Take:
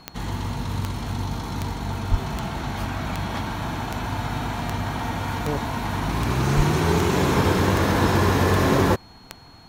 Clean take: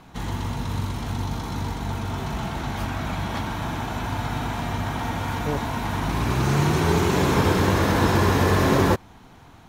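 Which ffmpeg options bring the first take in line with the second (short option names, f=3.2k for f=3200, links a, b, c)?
-filter_complex "[0:a]adeclick=t=4,bandreject=f=4.3k:w=30,asplit=3[a][b][c];[a]afade=t=out:st=2.1:d=0.02[d];[b]highpass=f=140:w=0.5412,highpass=f=140:w=1.3066,afade=t=in:st=2.1:d=0.02,afade=t=out:st=2.22:d=0.02[e];[c]afade=t=in:st=2.22:d=0.02[f];[d][e][f]amix=inputs=3:normalize=0,asplit=3[g][h][i];[g]afade=t=out:st=6.56:d=0.02[j];[h]highpass=f=140:w=0.5412,highpass=f=140:w=1.3066,afade=t=in:st=6.56:d=0.02,afade=t=out:st=6.68:d=0.02[k];[i]afade=t=in:st=6.68:d=0.02[l];[j][k][l]amix=inputs=3:normalize=0"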